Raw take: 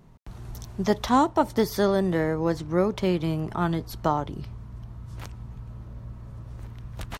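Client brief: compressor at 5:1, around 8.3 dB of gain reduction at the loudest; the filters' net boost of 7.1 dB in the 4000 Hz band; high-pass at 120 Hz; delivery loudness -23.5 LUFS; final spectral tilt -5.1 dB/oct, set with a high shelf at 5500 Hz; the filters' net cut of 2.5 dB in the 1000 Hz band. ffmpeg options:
-af "highpass=120,equalizer=f=1k:t=o:g=-3.5,equalizer=f=4k:t=o:g=6.5,highshelf=f=5.5k:g=6,acompressor=threshold=-26dB:ratio=5,volume=8.5dB"

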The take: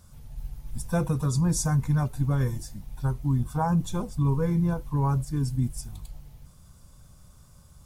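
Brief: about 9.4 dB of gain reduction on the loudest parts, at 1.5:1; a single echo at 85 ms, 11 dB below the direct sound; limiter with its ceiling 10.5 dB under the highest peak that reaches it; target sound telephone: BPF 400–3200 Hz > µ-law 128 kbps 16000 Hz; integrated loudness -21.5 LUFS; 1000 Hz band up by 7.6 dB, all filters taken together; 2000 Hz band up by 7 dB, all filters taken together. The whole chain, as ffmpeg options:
-af "equalizer=f=1k:t=o:g=8,equalizer=f=2k:t=o:g=6.5,acompressor=threshold=-43dB:ratio=1.5,alimiter=level_in=5dB:limit=-24dB:level=0:latency=1,volume=-5dB,highpass=400,lowpass=3.2k,aecho=1:1:85:0.282,volume=24dB" -ar 16000 -c:a pcm_mulaw

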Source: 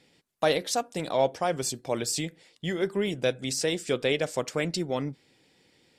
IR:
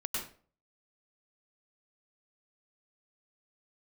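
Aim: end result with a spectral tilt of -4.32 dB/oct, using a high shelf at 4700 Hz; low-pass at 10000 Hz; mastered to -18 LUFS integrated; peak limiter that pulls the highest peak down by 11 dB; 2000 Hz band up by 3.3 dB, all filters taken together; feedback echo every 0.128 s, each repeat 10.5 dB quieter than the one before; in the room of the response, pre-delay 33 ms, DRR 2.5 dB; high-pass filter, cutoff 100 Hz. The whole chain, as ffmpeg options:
-filter_complex "[0:a]highpass=100,lowpass=10k,equalizer=f=2k:t=o:g=5.5,highshelf=f=4.7k:g=-8.5,alimiter=limit=-20.5dB:level=0:latency=1,aecho=1:1:128|256|384:0.299|0.0896|0.0269,asplit=2[a][b];[1:a]atrim=start_sample=2205,adelay=33[c];[b][c]afir=irnorm=-1:irlink=0,volume=-6dB[d];[a][d]amix=inputs=2:normalize=0,volume=13dB"

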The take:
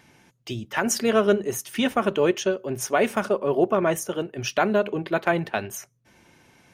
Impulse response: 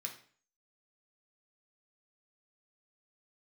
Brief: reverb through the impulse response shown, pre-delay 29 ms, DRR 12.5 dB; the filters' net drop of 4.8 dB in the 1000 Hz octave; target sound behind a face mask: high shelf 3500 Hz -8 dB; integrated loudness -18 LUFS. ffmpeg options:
-filter_complex "[0:a]equalizer=f=1k:t=o:g=-6.5,asplit=2[a][b];[1:a]atrim=start_sample=2205,adelay=29[c];[b][c]afir=irnorm=-1:irlink=0,volume=-10.5dB[d];[a][d]amix=inputs=2:normalize=0,highshelf=f=3.5k:g=-8,volume=8dB"

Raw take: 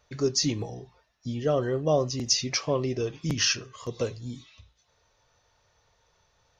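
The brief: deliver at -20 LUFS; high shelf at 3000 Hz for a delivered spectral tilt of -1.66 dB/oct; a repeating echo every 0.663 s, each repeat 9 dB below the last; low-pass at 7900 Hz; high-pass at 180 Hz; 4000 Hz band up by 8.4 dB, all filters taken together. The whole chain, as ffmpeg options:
-af "highpass=180,lowpass=7.9k,highshelf=f=3k:g=3.5,equalizer=f=4k:t=o:g=9,aecho=1:1:663|1326|1989|2652:0.355|0.124|0.0435|0.0152,volume=2.5dB"

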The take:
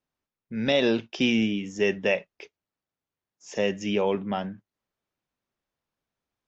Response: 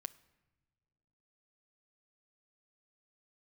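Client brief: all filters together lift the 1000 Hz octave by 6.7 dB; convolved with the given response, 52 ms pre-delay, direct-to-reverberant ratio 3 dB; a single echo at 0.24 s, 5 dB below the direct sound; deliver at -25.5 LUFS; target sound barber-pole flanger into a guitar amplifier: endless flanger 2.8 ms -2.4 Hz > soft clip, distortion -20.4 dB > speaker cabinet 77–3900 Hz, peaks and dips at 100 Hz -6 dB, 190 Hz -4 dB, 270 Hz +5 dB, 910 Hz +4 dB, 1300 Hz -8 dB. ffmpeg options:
-filter_complex "[0:a]equalizer=f=1k:t=o:g=7,aecho=1:1:240:0.562,asplit=2[a][b];[1:a]atrim=start_sample=2205,adelay=52[c];[b][c]afir=irnorm=-1:irlink=0,volume=0.5dB[d];[a][d]amix=inputs=2:normalize=0,asplit=2[e][f];[f]adelay=2.8,afreqshift=-2.4[g];[e][g]amix=inputs=2:normalize=1,asoftclip=threshold=-15dB,highpass=77,equalizer=f=100:t=q:w=4:g=-6,equalizer=f=190:t=q:w=4:g=-4,equalizer=f=270:t=q:w=4:g=5,equalizer=f=910:t=q:w=4:g=4,equalizer=f=1.3k:t=q:w=4:g=-8,lowpass=f=3.9k:w=0.5412,lowpass=f=3.9k:w=1.3066,volume=1.5dB"

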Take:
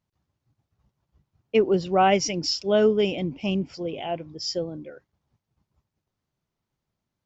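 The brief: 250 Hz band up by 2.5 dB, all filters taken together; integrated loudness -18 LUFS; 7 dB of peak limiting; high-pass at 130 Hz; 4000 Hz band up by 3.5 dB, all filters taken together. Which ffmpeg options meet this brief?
-af "highpass=130,equalizer=f=250:t=o:g=4.5,equalizer=f=4k:t=o:g=5.5,volume=6.5dB,alimiter=limit=-5.5dB:level=0:latency=1"

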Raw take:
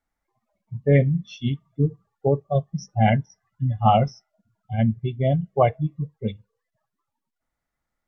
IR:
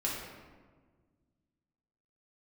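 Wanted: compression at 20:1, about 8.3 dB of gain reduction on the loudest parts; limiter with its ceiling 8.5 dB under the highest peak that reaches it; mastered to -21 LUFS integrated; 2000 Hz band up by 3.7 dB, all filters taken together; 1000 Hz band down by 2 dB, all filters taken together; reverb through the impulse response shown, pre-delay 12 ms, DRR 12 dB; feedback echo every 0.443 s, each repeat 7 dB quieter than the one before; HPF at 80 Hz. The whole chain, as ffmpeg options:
-filter_complex "[0:a]highpass=80,equalizer=f=1k:t=o:g=-4,equalizer=f=2k:t=o:g=5,acompressor=threshold=-20dB:ratio=20,alimiter=limit=-20dB:level=0:latency=1,aecho=1:1:443|886|1329|1772|2215:0.447|0.201|0.0905|0.0407|0.0183,asplit=2[a][b];[1:a]atrim=start_sample=2205,adelay=12[c];[b][c]afir=irnorm=-1:irlink=0,volume=-17dB[d];[a][d]amix=inputs=2:normalize=0,volume=10.5dB"

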